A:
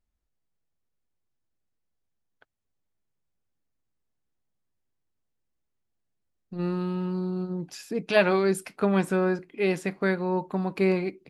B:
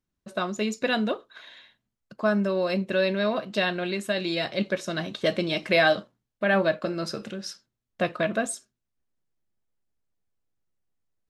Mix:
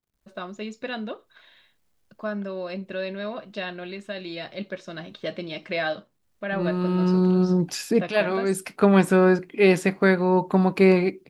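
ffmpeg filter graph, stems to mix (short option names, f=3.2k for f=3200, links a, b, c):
-filter_complex "[0:a]dynaudnorm=f=140:g=3:m=15.5dB,acrusher=bits=11:mix=0:aa=0.000001,volume=-4.5dB[a];[1:a]lowpass=5.1k,volume=-6.5dB,asplit=2[b][c];[c]apad=whole_len=497944[d];[a][d]sidechaincompress=threshold=-33dB:ratio=8:attack=23:release=603[e];[e][b]amix=inputs=2:normalize=0"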